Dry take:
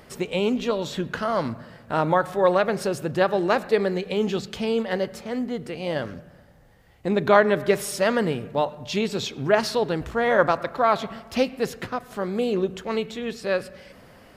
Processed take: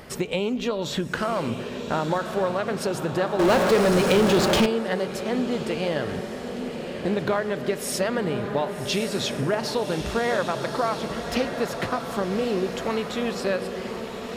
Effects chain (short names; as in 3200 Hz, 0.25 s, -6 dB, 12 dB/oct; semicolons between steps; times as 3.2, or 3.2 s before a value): compressor, threshold -28 dBFS, peak gain reduction 16 dB; diffused feedback echo 1.171 s, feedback 59%, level -7 dB; 3.39–4.66 power-law curve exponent 0.5; gain +5.5 dB